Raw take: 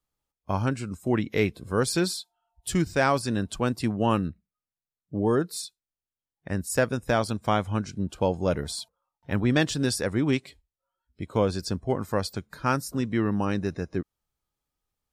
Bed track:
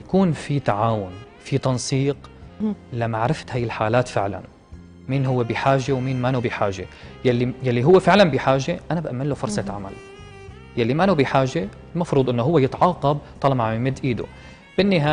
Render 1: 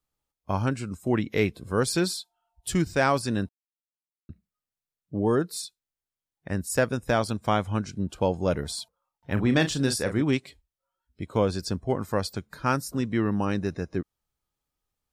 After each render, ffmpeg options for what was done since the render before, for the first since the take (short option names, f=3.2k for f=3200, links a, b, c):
-filter_complex "[0:a]asettb=1/sr,asplit=3[a][b][c];[a]atrim=end=9.334[d];[b]atrim=start=9.33:end=10.22,asetpts=PTS-STARTPTS,afade=t=in:d=0.004:c=qsin,afade=t=out:st=0.886:d=0.004:c=qsin,asplit=2[e][f];[f]adelay=37,volume=-9dB[g];[e][g]amix=inputs=2:normalize=0,atrim=end_sample=39249[h];[c]atrim=start=10.216[i];[d][h]acrossfade=d=0.004:c1=hsin:c2=qsin[j];[j][i]acrossfade=d=0.004:c1=qsin:c2=hsin,asplit=3[k][l][m];[k]atrim=end=3.49,asetpts=PTS-STARTPTS,afade=t=out:st=3.486:d=0.004:c=hsin[n];[l]atrim=start=3.49:end=4.29,asetpts=PTS-STARTPTS,volume=0[o];[m]atrim=start=4.29,asetpts=PTS-STARTPTS,afade=t=in:d=0.004:c=hsin[p];[n][o][p]concat=n=3:v=0:a=1"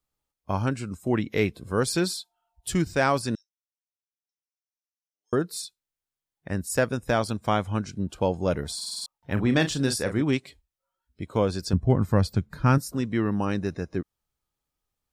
-filter_complex "[0:a]asettb=1/sr,asplit=3[a][b][c];[a]atrim=end=3.354[d];[b]atrim=start=3.35:end=5.33,asetpts=PTS-STARTPTS,afade=t=in:d=0.004:c=qsin,afade=t=out:st=1.976:d=0.004:c=qsin,asuperpass=centerf=5800:order=4:qfactor=5.1[e];[c]atrim=start=5.326[f];[d][e]acrossfade=d=0.004:c1=hsin:c2=qsin[g];[g][f]acrossfade=d=0.004:c1=qsin:c2=hsin,asettb=1/sr,asplit=3[h][i][j];[h]atrim=end=11.734[k];[i]atrim=start=11.73:end=12.78,asetpts=PTS-STARTPTS,afade=t=in:d=0.004:c=qsin,afade=t=out:st=1.046:d=0.004:c=qsin,bass=f=250:g=12,treble=f=4k:g=-4[l];[j]atrim=start=12.776[m];[k][l]acrossfade=d=0.004:c1=hsin:c2=qsin[n];[n][m]acrossfade=d=0.004:c1=qsin:c2=hsin,asplit=7[o][p][q][r][s][t][u];[o]atrim=end=8.812[v];[p]atrim=start=8.758:end=8.812[w];[q]atrim=start=8.758:end=8.812[x];[r]atrim=start=8.758:end=8.812[y];[s]atrim=start=8.758:end=8.812[z];[t]atrim=start=8.758:end=8.812[aa];[u]atrim=start=9.058[ab];[v][w]acrossfade=d=0.004:c1=hsin:c2=hsin[ac];[ac][x]acrossfade=d=0.004:c1=hsin:c2=hsin[ad];[ad][y]acrossfade=d=0.004:c1=hsin:c2=hsin[ae];[ae][z]acrossfade=d=0.004:c1=hsin:c2=hsin[af];[af][aa]acrossfade=d=0.004:c1=hsin:c2=hsin[ag];[ag][ab]acrossfade=d=0.004:c1=hsin:c2=hsin"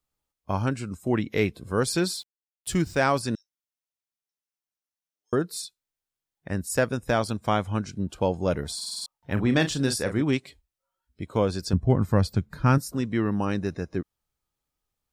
-filter_complex "[0:a]asettb=1/sr,asplit=3[a][b][c];[a]atrim=end=2.104[d];[b]atrim=start=2.1:end=3,asetpts=PTS-STARTPTS,afade=t=in:d=0.004:c=qsin,afade=t=out:st=0.896:d=0.004:c=qsin,aeval=exprs='val(0)*gte(abs(val(0)),0.00355)':c=same[e];[c]atrim=start=2.996[f];[d][e]acrossfade=d=0.004:c1=hsin:c2=qsin[g];[g][f]acrossfade=d=0.004:c1=qsin:c2=hsin"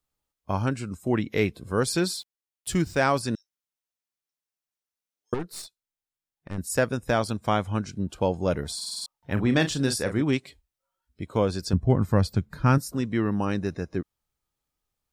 -filter_complex "[0:a]asettb=1/sr,asplit=3[a][b][c];[a]atrim=end=5.344[d];[b]atrim=start=5.34:end=6.58,asetpts=PTS-STARTPTS,afade=t=in:d=0.004:c=qsin,afade=t=out:st=1.236:d=0.004:c=qsin,aeval=exprs='(tanh(22.4*val(0)+0.8)-tanh(0.8))/22.4':c=same[e];[c]atrim=start=6.576[f];[d][e]acrossfade=d=0.004:c1=hsin:c2=qsin[g];[g][f]acrossfade=d=0.004:c1=qsin:c2=hsin"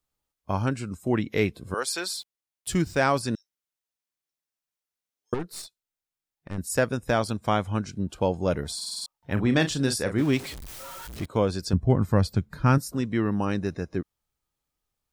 -filter_complex "[0:a]asettb=1/sr,asplit=3[a][b][c];[a]atrim=end=1.744[d];[b]atrim=start=1.74:end=2.14,asetpts=PTS-STARTPTS,afade=t=in:d=0.004:c=qsin,afade=t=out:st=0.396:d=0.004:c=qsin,highpass=650[e];[c]atrim=start=2.136[f];[d][e]acrossfade=d=0.004:c1=hsin:c2=qsin[g];[g][f]acrossfade=d=0.004:c1=qsin:c2=hsin,asettb=1/sr,asplit=3[h][i][j];[h]atrim=end=10.184[k];[i]atrim=start=10.18:end=11.26,asetpts=PTS-STARTPTS,afade=t=in:d=0.004:c=qsin,afade=t=out:st=1.076:d=0.004:c=qsin,aeval=exprs='val(0)+0.5*0.0211*sgn(val(0))':c=same[l];[j]atrim=start=11.256[m];[k][l]acrossfade=d=0.004:c1=hsin:c2=qsin[n];[n][m]acrossfade=d=0.004:c1=qsin:c2=hsin"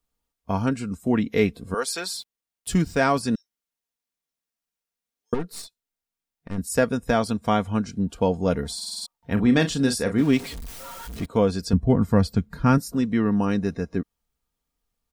-af "lowshelf=f=450:g=4,aecho=1:1:4.3:0.45"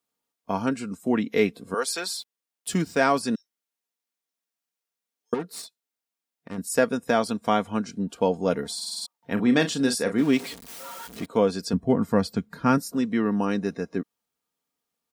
-af "highpass=210"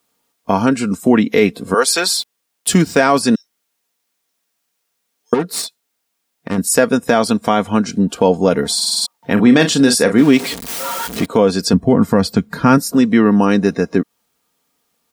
-filter_complex "[0:a]asplit=2[a][b];[b]acompressor=threshold=-31dB:ratio=6,volume=0.5dB[c];[a][c]amix=inputs=2:normalize=0,alimiter=level_in=10dB:limit=-1dB:release=50:level=0:latency=1"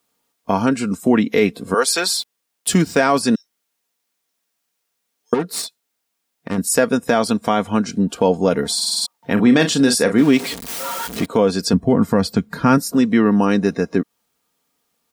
-af "volume=-3dB"